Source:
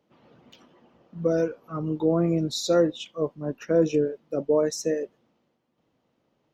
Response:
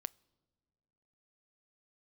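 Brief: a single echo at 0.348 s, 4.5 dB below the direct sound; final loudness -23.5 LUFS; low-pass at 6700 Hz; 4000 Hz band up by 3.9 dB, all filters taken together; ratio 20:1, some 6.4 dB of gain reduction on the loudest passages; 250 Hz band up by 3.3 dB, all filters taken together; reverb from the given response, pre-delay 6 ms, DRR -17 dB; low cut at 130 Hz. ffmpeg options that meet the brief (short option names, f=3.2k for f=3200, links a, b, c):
-filter_complex "[0:a]highpass=130,lowpass=6.7k,equalizer=f=250:t=o:g=5.5,equalizer=f=4k:t=o:g=5,acompressor=threshold=-20dB:ratio=20,aecho=1:1:348:0.596,asplit=2[a][b];[1:a]atrim=start_sample=2205,adelay=6[c];[b][c]afir=irnorm=-1:irlink=0,volume=20dB[d];[a][d]amix=inputs=2:normalize=0,volume=-15dB"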